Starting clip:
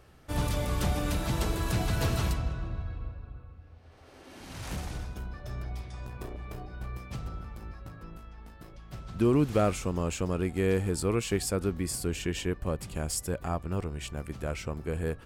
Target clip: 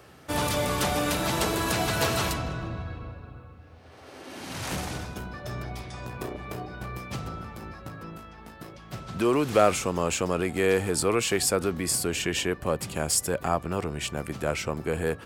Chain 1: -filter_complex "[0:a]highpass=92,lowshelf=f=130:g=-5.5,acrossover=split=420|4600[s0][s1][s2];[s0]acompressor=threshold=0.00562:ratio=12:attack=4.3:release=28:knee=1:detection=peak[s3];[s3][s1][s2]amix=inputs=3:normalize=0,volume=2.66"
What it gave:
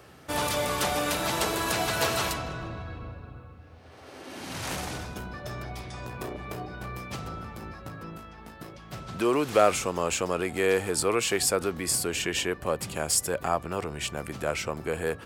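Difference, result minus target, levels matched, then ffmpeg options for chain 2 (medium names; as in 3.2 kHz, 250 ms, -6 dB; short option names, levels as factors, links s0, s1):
compression: peak gain reduction +6 dB
-filter_complex "[0:a]highpass=92,lowshelf=f=130:g=-5.5,acrossover=split=420|4600[s0][s1][s2];[s0]acompressor=threshold=0.0119:ratio=12:attack=4.3:release=28:knee=1:detection=peak[s3];[s3][s1][s2]amix=inputs=3:normalize=0,volume=2.66"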